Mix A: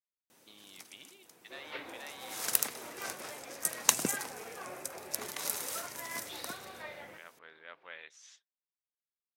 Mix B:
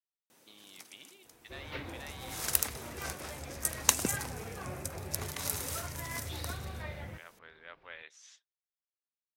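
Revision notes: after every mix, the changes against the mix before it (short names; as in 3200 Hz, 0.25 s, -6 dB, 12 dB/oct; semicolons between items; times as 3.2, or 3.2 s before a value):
first sound: remove BPF 370–5200 Hz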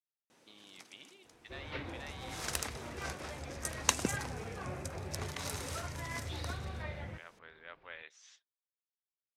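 master: add air absorption 61 m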